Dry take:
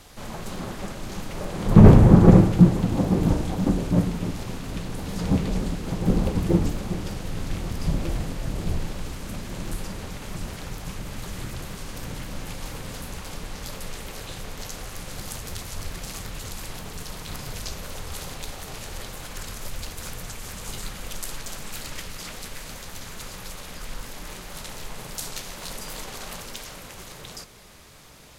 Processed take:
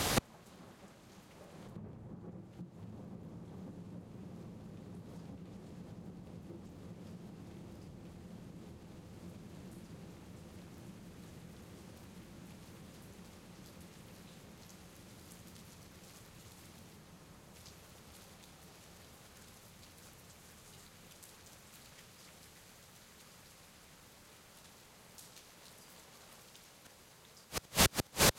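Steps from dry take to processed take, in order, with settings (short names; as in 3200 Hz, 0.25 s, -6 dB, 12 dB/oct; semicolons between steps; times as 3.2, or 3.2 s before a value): 16.96–17.53 LPF 2600 Hz -> 1400 Hz; on a send: diffused feedback echo 1.246 s, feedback 78%, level -7 dB; on the sum: compressor 16:1, threshold -23 dBFS, peak gain reduction 19 dB; flipped gate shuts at -27 dBFS, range -38 dB; HPF 82 Hz 12 dB/oct; gain +16.5 dB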